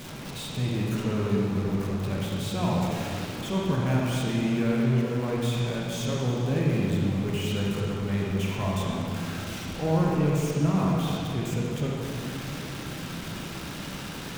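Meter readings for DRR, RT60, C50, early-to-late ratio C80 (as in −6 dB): −3.5 dB, 2.6 s, −2.0 dB, −0.5 dB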